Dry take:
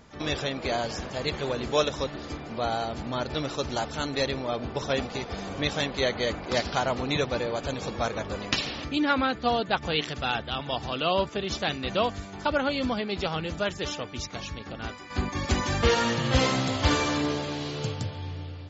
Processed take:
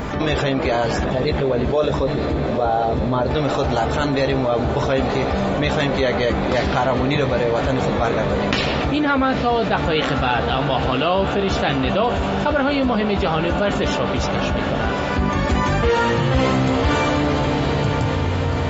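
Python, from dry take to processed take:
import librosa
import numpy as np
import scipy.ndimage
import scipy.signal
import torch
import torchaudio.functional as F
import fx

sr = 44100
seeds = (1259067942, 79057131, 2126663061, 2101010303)

y = fx.envelope_sharpen(x, sr, power=1.5, at=(1.04, 3.31))
y = fx.peak_eq(y, sr, hz=5600.0, db=-11.5, octaves=1.6)
y = fx.doubler(y, sr, ms=15.0, db=-8.5)
y = fx.echo_diffused(y, sr, ms=945, feedback_pct=71, wet_db=-12.5)
y = fx.env_flatten(y, sr, amount_pct=70)
y = F.gain(torch.from_numpy(y), 1.5).numpy()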